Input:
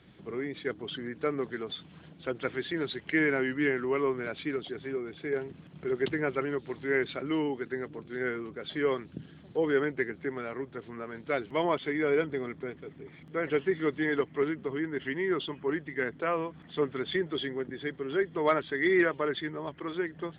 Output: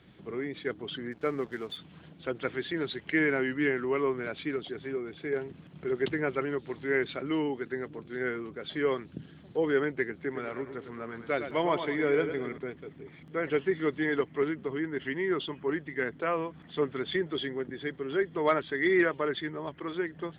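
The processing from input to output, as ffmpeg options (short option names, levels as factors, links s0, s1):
-filter_complex "[0:a]asplit=3[s0][s1][s2];[s0]afade=t=out:st=1.11:d=0.02[s3];[s1]aeval=exprs='sgn(val(0))*max(abs(val(0))-0.00211,0)':c=same,afade=t=in:st=1.11:d=0.02,afade=t=out:st=1.76:d=0.02[s4];[s2]afade=t=in:st=1.76:d=0.02[s5];[s3][s4][s5]amix=inputs=3:normalize=0,asettb=1/sr,asplit=3[s6][s7][s8];[s6]atrim=end=10.204[s9];[s7]atrim=start=10.2:end=12.58,asetpts=PTS-STARTPTS,afade=t=in:d=0.004:c=qsin,afade=t=out:st=2.376:d=0.004:c=qsin,aecho=1:1:104|208|312|416:0.355|0.131|0.0486|0.018,atrim=end_sample=104958[s10];[s8]atrim=start=12.576[s11];[s9][s10]acrossfade=d=0.004:c1=hsin:c2=qsin[s12];[s12][s11]acrossfade=d=0.004:c1=qsin:c2=hsin"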